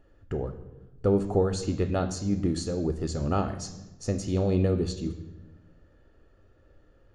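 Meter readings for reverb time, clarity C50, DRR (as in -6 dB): 1.1 s, 11.5 dB, 8.5 dB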